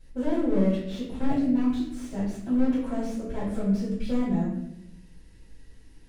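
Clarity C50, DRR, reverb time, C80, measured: 2.5 dB, -9.5 dB, 0.80 s, 5.5 dB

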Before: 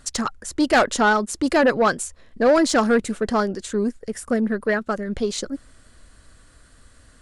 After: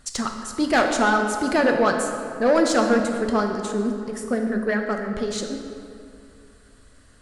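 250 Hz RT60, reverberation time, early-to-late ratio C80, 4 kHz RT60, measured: 2.5 s, 2.5 s, 5.5 dB, 1.5 s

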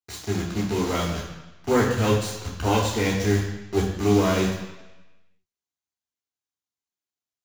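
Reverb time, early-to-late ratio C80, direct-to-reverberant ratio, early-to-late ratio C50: 1.0 s, 6.5 dB, -4.0 dB, 4.0 dB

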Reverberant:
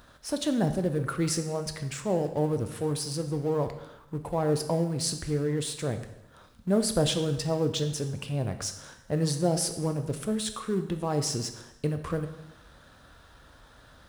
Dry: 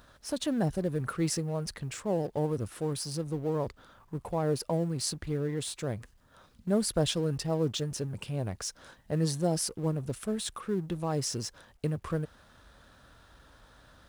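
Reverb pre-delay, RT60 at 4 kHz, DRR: 7 ms, 0.85 s, 7.5 dB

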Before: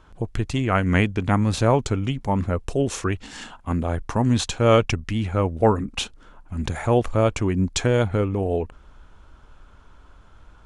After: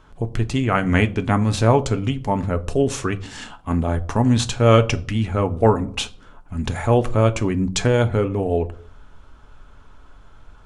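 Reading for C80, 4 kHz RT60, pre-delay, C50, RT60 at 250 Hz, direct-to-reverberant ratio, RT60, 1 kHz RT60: 23.5 dB, 0.35 s, 5 ms, 20.0 dB, 0.65 s, 8.5 dB, 0.50 s, 0.45 s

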